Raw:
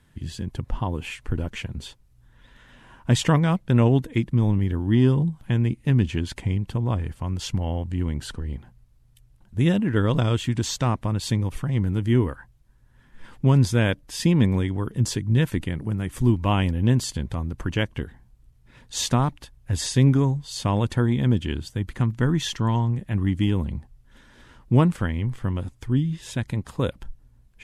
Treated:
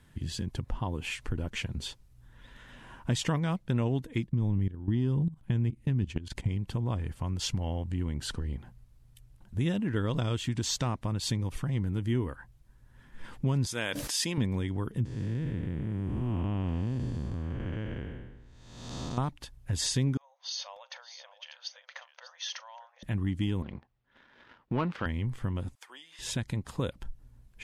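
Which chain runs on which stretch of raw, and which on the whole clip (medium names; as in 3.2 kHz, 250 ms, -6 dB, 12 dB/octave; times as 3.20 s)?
4.26–6.49 s: bass shelf 320 Hz +7.5 dB + level held to a coarse grid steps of 17 dB
13.66–14.38 s: high-pass 750 Hz 6 dB/octave + peaking EQ 9.1 kHz +3.5 dB 1.2 oct + decay stretcher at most 36 dB/s
15.05–19.18 s: spectral blur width 475 ms + low-pass 1.5 kHz 6 dB/octave
20.17–23.03 s: compression 16:1, threshold -34 dBFS + brick-wall FIR band-pass 500–6600 Hz + multi-tap echo 40/594 ms -19/-12.5 dB
23.62–25.06 s: high-pass 660 Hz 6 dB/octave + waveshaping leveller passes 2 + distance through air 270 m
25.75–26.19 s: high-pass 680 Hz 24 dB/octave + compression 1.5:1, threshold -53 dBFS
whole clip: compression 2:1, threshold -33 dBFS; dynamic bell 5.1 kHz, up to +4 dB, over -54 dBFS, Q 0.92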